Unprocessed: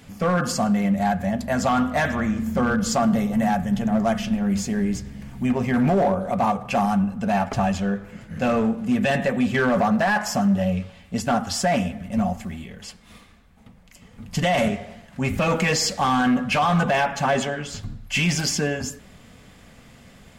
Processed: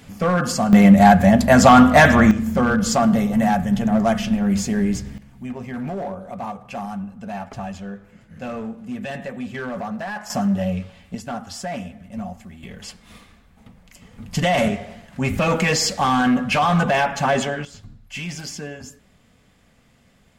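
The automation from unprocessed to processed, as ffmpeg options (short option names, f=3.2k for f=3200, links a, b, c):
-af "asetnsamples=n=441:p=0,asendcmd='0.73 volume volume 11dB;2.31 volume volume 3dB;5.18 volume volume -9dB;10.3 volume volume -0.5dB;11.15 volume volume -8dB;12.63 volume volume 2dB;17.65 volume volume -9dB',volume=2dB"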